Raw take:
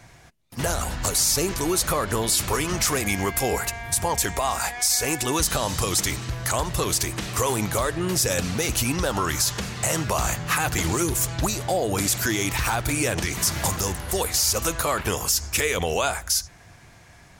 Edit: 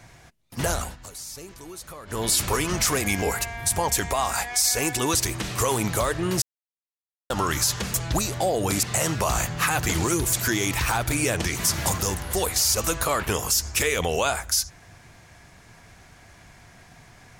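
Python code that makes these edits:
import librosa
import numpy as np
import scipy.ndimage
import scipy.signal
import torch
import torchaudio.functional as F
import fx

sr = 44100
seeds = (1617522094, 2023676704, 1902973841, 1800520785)

y = fx.edit(x, sr, fx.fade_down_up(start_s=0.74, length_s=1.54, db=-17.0, fade_s=0.23),
    fx.cut(start_s=3.22, length_s=0.26),
    fx.cut(start_s=5.41, length_s=1.52),
    fx.silence(start_s=8.2, length_s=0.88),
    fx.move(start_s=11.22, length_s=0.89, to_s=9.72), tone=tone)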